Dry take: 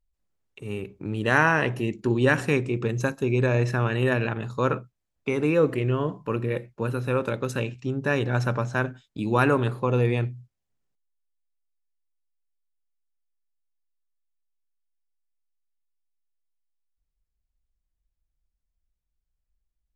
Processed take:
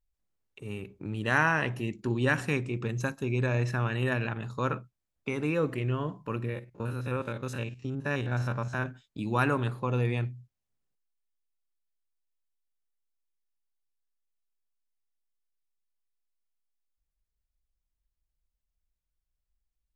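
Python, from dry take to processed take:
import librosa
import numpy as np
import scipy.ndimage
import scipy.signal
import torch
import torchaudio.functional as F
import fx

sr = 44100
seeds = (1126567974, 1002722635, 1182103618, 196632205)

y = fx.spec_steps(x, sr, hold_ms=50, at=(6.49, 8.86))
y = fx.dynamic_eq(y, sr, hz=440.0, q=1.3, threshold_db=-37.0, ratio=4.0, max_db=-5)
y = y * librosa.db_to_amplitude(-4.0)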